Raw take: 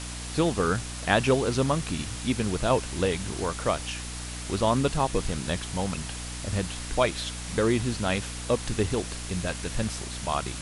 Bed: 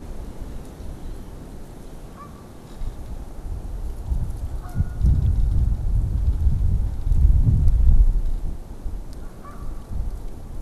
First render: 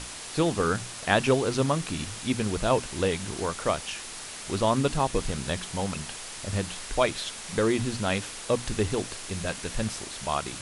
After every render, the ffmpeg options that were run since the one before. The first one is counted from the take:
-af "bandreject=f=60:t=h:w=6,bandreject=f=120:t=h:w=6,bandreject=f=180:t=h:w=6,bandreject=f=240:t=h:w=6,bandreject=f=300:t=h:w=6"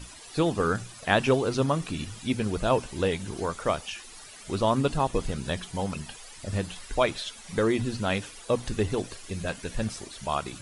-af "afftdn=nr=13:nf=-40"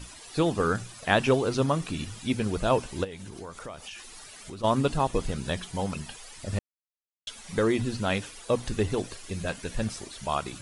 -filter_complex "[0:a]asplit=3[s0][s1][s2];[s0]afade=t=out:st=3.03:d=0.02[s3];[s1]acompressor=threshold=0.0126:ratio=4:attack=3.2:release=140:knee=1:detection=peak,afade=t=in:st=3.03:d=0.02,afade=t=out:st=4.63:d=0.02[s4];[s2]afade=t=in:st=4.63:d=0.02[s5];[s3][s4][s5]amix=inputs=3:normalize=0,asplit=3[s6][s7][s8];[s6]atrim=end=6.59,asetpts=PTS-STARTPTS,afade=t=out:st=6.586:d=0.004:c=hsin[s9];[s7]atrim=start=6.59:end=7.27,asetpts=PTS-STARTPTS,volume=0[s10];[s8]atrim=start=7.27,asetpts=PTS-STARTPTS,afade=t=in:d=0.004:c=hsin[s11];[s9][s10][s11]concat=n=3:v=0:a=1"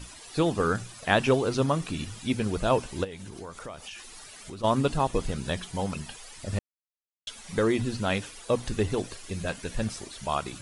-af anull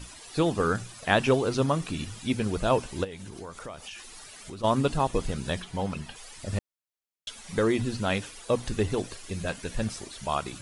-filter_complex "[0:a]asettb=1/sr,asplit=3[s0][s1][s2];[s0]atrim=end=5.624[s3];[s1]atrim=start=5.62:end=6.16,asetpts=PTS-STARTPTS,afade=t=in:d=0.004:c=qsin,afade=t=out:st=0.536:d=0.004:c=qsin,acrossover=split=4300[s4][s5];[s5]acompressor=threshold=0.00224:ratio=4:attack=1:release=60[s6];[s4][s6]amix=inputs=2:normalize=0[s7];[s2]atrim=start=6.156[s8];[s3][s7]acrossfade=d=0.004:c1=hsin:c2=qsin[s9];[s9][s8]acrossfade=d=0.004:c1=qsin:c2=hsin"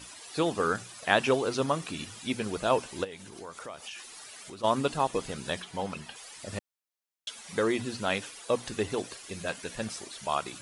-af "highpass=f=140:p=1,lowshelf=f=260:g=-7"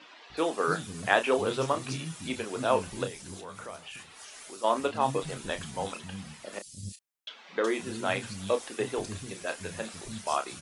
-filter_complex "[0:a]asplit=2[s0][s1];[s1]adelay=31,volume=0.355[s2];[s0][s2]amix=inputs=2:normalize=0,acrossover=split=240|4000[s3][s4][s5];[s3]adelay=300[s6];[s5]adelay=370[s7];[s6][s4][s7]amix=inputs=3:normalize=0"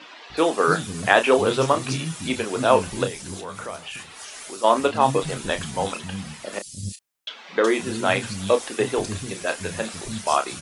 -af "volume=2.66,alimiter=limit=0.891:level=0:latency=1"

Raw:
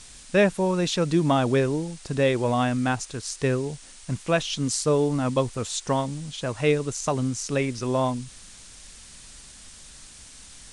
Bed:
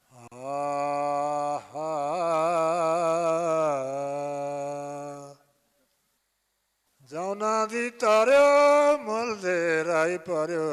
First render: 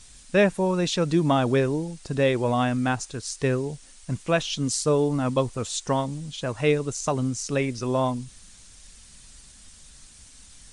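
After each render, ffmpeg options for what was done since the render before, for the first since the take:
-af "afftdn=nr=6:nf=-47"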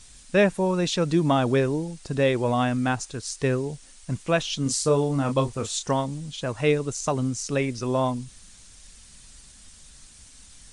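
-filter_complex "[0:a]asettb=1/sr,asplit=3[s0][s1][s2];[s0]atrim=end=4.634[s3];[s1]atrim=start=4.63:end=5.91,asetpts=PTS-STARTPTS,afade=t=in:d=0.004:c=qsin,afade=t=out:st=1.276:d=0.004:c=qsin,asplit=2[s4][s5];[s5]adelay=29,volume=0.447[s6];[s4][s6]amix=inputs=2:normalize=0,atrim=end_sample=56448[s7];[s2]atrim=start=5.906[s8];[s3][s7]acrossfade=d=0.004:c1=hsin:c2=qsin[s9];[s9][s8]acrossfade=d=0.004:c1=qsin:c2=hsin"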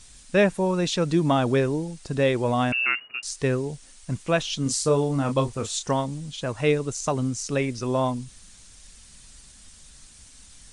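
-filter_complex "[0:a]asettb=1/sr,asplit=3[s0][s1][s2];[s0]atrim=end=2.724[s3];[s1]atrim=start=2.72:end=3.23,asetpts=PTS-STARTPTS,afade=t=in:d=0.004:c=qsin,afade=t=out:st=0.506:d=0.004:c=qsin,lowpass=f=2500:t=q:w=0.5098,lowpass=f=2500:t=q:w=0.6013,lowpass=f=2500:t=q:w=0.9,lowpass=f=2500:t=q:w=2.563,afreqshift=-2900[s4];[s2]atrim=start=3.226[s5];[s3][s4]acrossfade=d=0.004:c1=hsin:c2=qsin[s6];[s6][s5]acrossfade=d=0.004:c1=qsin:c2=hsin"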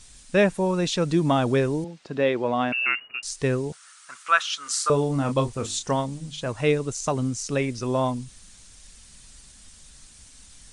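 -filter_complex "[0:a]asettb=1/sr,asplit=3[s0][s1][s2];[s0]atrim=end=1.844[s3];[s1]atrim=start=1.84:end=2.84,asetpts=PTS-STARTPTS,afade=t=in:d=0.004:c=qsin,afade=t=out:st=0.996:d=0.004:c=qsin,highpass=210,lowpass=3600[s4];[s2]atrim=start=2.836[s5];[s3][s4]acrossfade=d=0.004:c1=hsin:c2=qsin[s6];[s6][s5]acrossfade=d=0.004:c1=qsin:c2=hsin,asettb=1/sr,asplit=3[s7][s8][s9];[s7]atrim=end=3.724[s10];[s8]atrim=start=3.72:end=4.9,asetpts=PTS-STARTPTS,afade=t=in:d=0.004:c=qsin,afade=t=out:st=1.176:d=0.004:c=qsin,highpass=f=1300:t=q:w=6.4[s11];[s9]atrim=start=4.896[s12];[s10][s11]acrossfade=d=0.004:c1=hsin:c2=qsin[s13];[s13][s12]acrossfade=d=0.004:c1=qsin:c2=hsin,asplit=3[s14][s15][s16];[s14]afade=t=out:st=5.64:d=0.02[s17];[s15]bandreject=f=50:t=h:w=6,bandreject=f=100:t=h:w=6,bandreject=f=150:t=h:w=6,bandreject=f=200:t=h:w=6,bandreject=f=250:t=h:w=6,bandreject=f=300:t=h:w=6,bandreject=f=350:t=h:w=6,afade=t=in:st=5.64:d=0.02,afade=t=out:st=6.47:d=0.02[s18];[s16]afade=t=in:st=6.47:d=0.02[s19];[s17][s18][s19]amix=inputs=3:normalize=0"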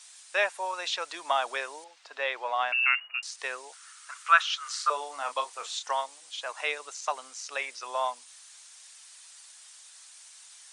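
-filter_complex "[0:a]highpass=f=750:w=0.5412,highpass=f=750:w=1.3066,acrossover=split=4900[s0][s1];[s1]acompressor=threshold=0.00562:ratio=4:attack=1:release=60[s2];[s0][s2]amix=inputs=2:normalize=0"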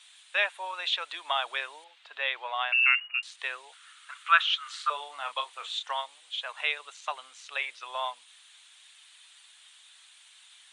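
-af "highpass=f=1100:p=1,highshelf=f=4300:t=q:w=3:g=-7"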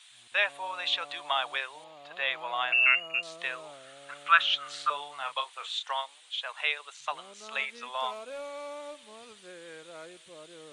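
-filter_complex "[1:a]volume=0.0794[s0];[0:a][s0]amix=inputs=2:normalize=0"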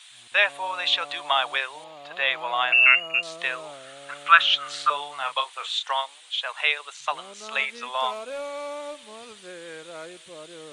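-af "volume=2.11,alimiter=limit=0.891:level=0:latency=1"

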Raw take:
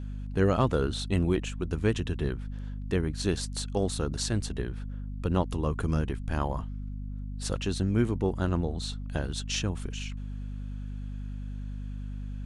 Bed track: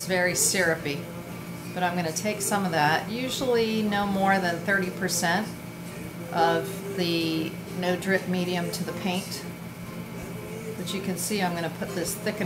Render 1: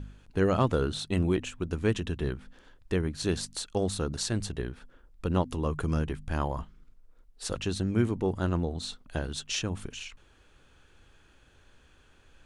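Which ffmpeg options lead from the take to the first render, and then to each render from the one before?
-af "bandreject=f=50:t=h:w=4,bandreject=f=100:t=h:w=4,bandreject=f=150:t=h:w=4,bandreject=f=200:t=h:w=4,bandreject=f=250:t=h:w=4"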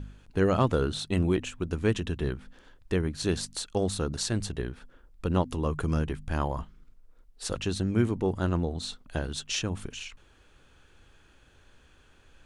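-af "volume=1.12"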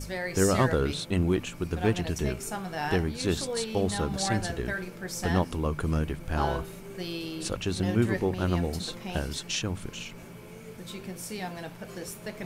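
-filter_complex "[1:a]volume=0.335[s0];[0:a][s0]amix=inputs=2:normalize=0"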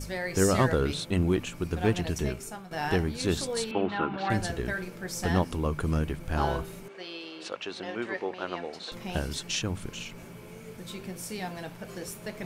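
-filter_complex "[0:a]asettb=1/sr,asplit=3[s0][s1][s2];[s0]atrim=end=3.714[s3];[s1]atrim=start=3.71:end=4.3,asetpts=PTS-STARTPTS,afade=t=in:d=0.004:c=qsin,afade=t=out:st=0.586:d=0.004:c=qsin,highpass=210,equalizer=f=330:t=q:w=4:g=6,equalizer=f=480:t=q:w=4:g=-5,equalizer=f=940:t=q:w=4:g=6,equalizer=f=1400:t=q:w=4:g=8,equalizer=f=2700:t=q:w=4:g=7,lowpass=f=3000:w=0.5412,lowpass=f=3000:w=1.3066[s4];[s2]atrim=start=4.296[s5];[s3][s4]acrossfade=d=0.004:c1=hsin:c2=qsin[s6];[s6][s5]acrossfade=d=0.004:c1=qsin:c2=hsin,asettb=1/sr,asplit=3[s7][s8][s9];[s7]atrim=end=6.884[s10];[s8]atrim=start=6.88:end=8.92,asetpts=PTS-STARTPTS,afade=t=in:d=0.004:c=qsin,afade=t=out:st=2.036:d=0.004:c=qsin,highpass=490,lowpass=3900[s11];[s9]atrim=start=8.916[s12];[s10][s11]acrossfade=d=0.004:c1=hsin:c2=qsin[s13];[s13][s12]acrossfade=d=0.004:c1=qsin:c2=hsin,asplit=2[s14][s15];[s14]atrim=end=2.71,asetpts=PTS-STARTPTS,afade=t=out:st=2.19:d=0.52:silence=0.251189[s16];[s15]atrim=start=2.71,asetpts=PTS-STARTPTS,afade=t=in:d=0.004:c=hsin:silence=0.251189[s17];[s16][s17]concat=n=2:v=0:a=1"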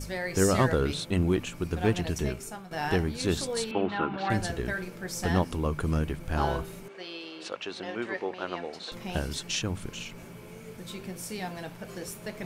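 -af anull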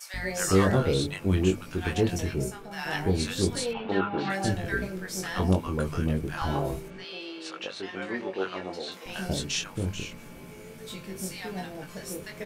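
-filter_complex "[0:a]asplit=2[s0][s1];[s1]adelay=21,volume=0.631[s2];[s0][s2]amix=inputs=2:normalize=0,acrossover=split=850[s3][s4];[s3]adelay=140[s5];[s5][s4]amix=inputs=2:normalize=0"

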